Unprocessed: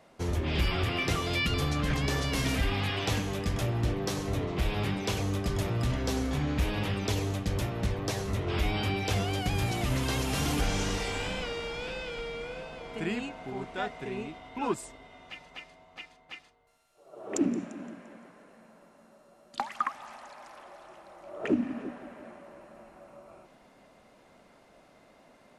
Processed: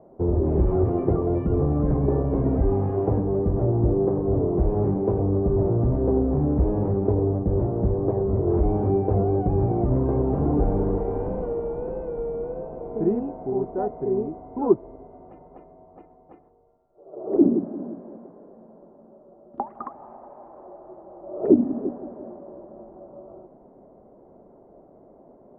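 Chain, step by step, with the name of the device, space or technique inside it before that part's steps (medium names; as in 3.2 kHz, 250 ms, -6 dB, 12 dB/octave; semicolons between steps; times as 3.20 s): under water (low-pass 810 Hz 24 dB/octave; peaking EQ 380 Hz +8 dB 0.49 oct); trim +7 dB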